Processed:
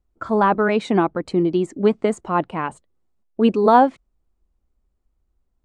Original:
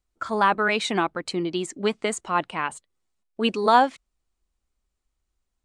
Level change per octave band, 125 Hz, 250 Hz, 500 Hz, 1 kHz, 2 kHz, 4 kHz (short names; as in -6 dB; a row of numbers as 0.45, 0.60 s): +9.0, +8.5, +7.0, +3.0, -2.0, -6.5 dB